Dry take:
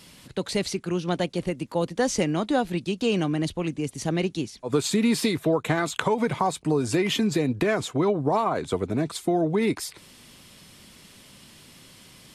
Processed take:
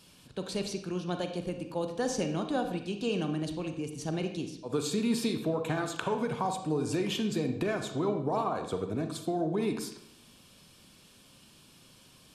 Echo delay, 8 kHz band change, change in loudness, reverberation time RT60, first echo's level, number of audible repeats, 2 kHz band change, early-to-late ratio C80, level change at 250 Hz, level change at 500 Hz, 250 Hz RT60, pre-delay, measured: no echo, -7.5 dB, -7.0 dB, 0.70 s, no echo, no echo, -9.0 dB, 10.5 dB, -7.0 dB, -7.0 dB, 0.80 s, 32 ms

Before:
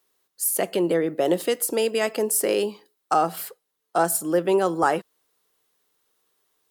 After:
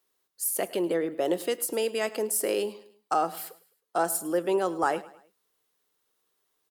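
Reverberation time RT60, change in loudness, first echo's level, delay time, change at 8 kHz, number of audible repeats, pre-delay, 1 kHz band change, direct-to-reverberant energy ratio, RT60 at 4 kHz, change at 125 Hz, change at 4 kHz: no reverb, -5.0 dB, -19.0 dB, 105 ms, -5.0 dB, 3, no reverb, -5.0 dB, no reverb, no reverb, -9.5 dB, -5.0 dB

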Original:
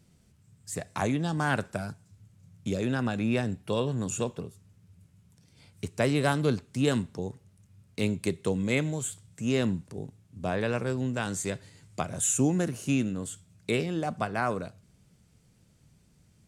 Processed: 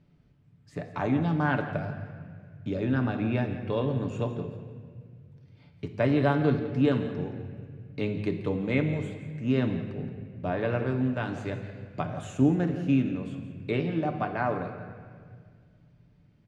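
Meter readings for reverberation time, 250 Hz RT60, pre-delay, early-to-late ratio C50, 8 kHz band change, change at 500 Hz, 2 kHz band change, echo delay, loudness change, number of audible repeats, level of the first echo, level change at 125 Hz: 1.9 s, 2.5 s, 3 ms, 7.5 dB, under -20 dB, +1.0 dB, -1.0 dB, 171 ms, +1.0 dB, 1, -14.5 dB, +2.5 dB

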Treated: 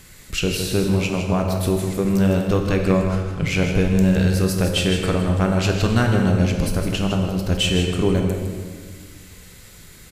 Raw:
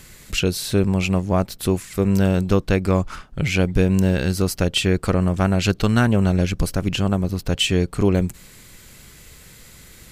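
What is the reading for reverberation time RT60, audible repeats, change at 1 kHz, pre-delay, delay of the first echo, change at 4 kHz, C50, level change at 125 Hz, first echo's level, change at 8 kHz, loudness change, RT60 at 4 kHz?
1.7 s, 1, 0.0 dB, 8 ms, 159 ms, 0.0 dB, 3.0 dB, +0.5 dB, -8.0 dB, 0.0 dB, +0.5 dB, 1.4 s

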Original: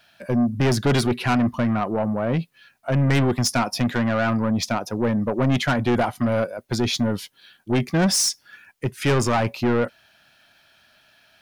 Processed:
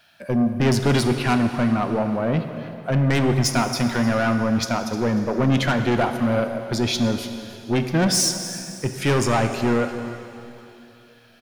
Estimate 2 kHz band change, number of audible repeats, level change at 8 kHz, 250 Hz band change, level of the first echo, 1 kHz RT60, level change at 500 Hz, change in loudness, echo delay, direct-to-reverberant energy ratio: +1.0 dB, 1, +1.0 dB, +1.0 dB, -16.5 dB, 2.9 s, +1.0 dB, +0.5 dB, 306 ms, 6.5 dB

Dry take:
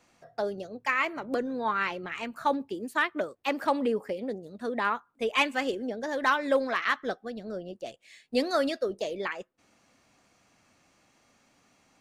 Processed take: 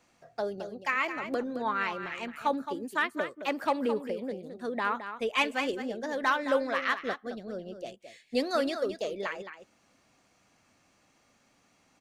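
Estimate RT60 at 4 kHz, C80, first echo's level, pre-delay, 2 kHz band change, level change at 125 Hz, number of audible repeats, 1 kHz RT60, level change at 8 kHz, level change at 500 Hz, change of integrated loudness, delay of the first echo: no reverb, no reverb, -10.0 dB, no reverb, -1.5 dB, -1.5 dB, 1, no reverb, -1.5 dB, -1.5 dB, -1.5 dB, 217 ms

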